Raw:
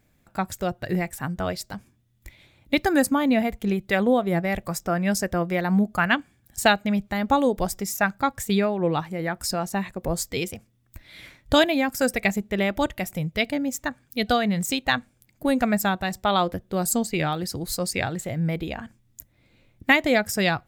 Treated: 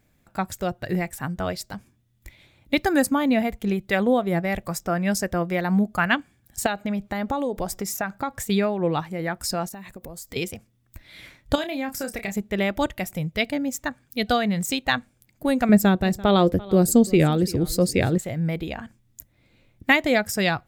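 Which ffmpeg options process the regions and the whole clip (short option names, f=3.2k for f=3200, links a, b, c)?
-filter_complex "[0:a]asettb=1/sr,asplit=3[a][b][c];[a]atrim=end=6.664[d];[b]atrim=start=6.66:end=8.44,asetpts=PTS-STARTPTS,afade=t=in:d=0.004:c=qsin,afade=t=out:st=1.776:d=0.004:c=qsin,equalizer=f=640:t=o:w=3:g=4.5,acompressor=threshold=-23dB:ratio=4:attack=3.2:release=140:knee=1:detection=peak[e];[c]atrim=start=8.436[f];[d][e]acrossfade=d=0.004:c1=hsin:c2=qsin[g];[g][f]acrossfade=d=0.004:c1=qsin:c2=hsin,asettb=1/sr,asplit=3[h][i][j];[h]atrim=end=9.684[k];[i]atrim=start=9.68:end=10.36,asetpts=PTS-STARTPTS,afade=t=in:d=0.004:c=qsin,afade=t=out:st=0.676:d=0.004:c=qsin,highshelf=f=11k:g=12,acompressor=threshold=-34dB:ratio=12:attack=3.2:release=140:knee=1:detection=peak[l];[j]atrim=start=10.356[m];[k][l]acrossfade=d=0.004:c1=hsin:c2=qsin[n];[n][m]acrossfade=d=0.004:c1=qsin:c2=hsin,asettb=1/sr,asplit=3[o][p][q];[o]atrim=end=11.554[r];[p]atrim=start=11.55:end=12.32,asetpts=PTS-STARTPTS,afade=t=in:d=0.004:c=qsin,afade=t=out:st=0.766:d=0.004:c=qsin,acompressor=threshold=-28dB:ratio=3:attack=3.2:release=140:knee=1:detection=peak,asplit=2[s][t];[t]adelay=30,volume=-8.5dB[u];[s][u]amix=inputs=2:normalize=0,atrim=end_sample=33957[v];[q]atrim=start=12.316[w];[r][v]acrossfade=d=0.004:c1=hsin:c2=qsin[x];[x][w]acrossfade=d=0.004:c1=qsin:c2=hsin,asettb=1/sr,asplit=3[y][z][aa];[y]atrim=end=15.694[ab];[z]atrim=start=15.69:end=18.18,asetpts=PTS-STARTPTS,afade=t=in:d=0.004:c=qsin,afade=t=out:st=2.486:d=0.004:c=qsin,lowshelf=f=600:t=q:w=1.5:g=8,aecho=1:1:340:0.0944,atrim=end_sample=109809[ac];[aa]atrim=start=18.176[ad];[ab][ac]acrossfade=d=0.004:c1=hsin:c2=qsin[ae];[ae][ad]acrossfade=d=0.004:c1=qsin:c2=hsin"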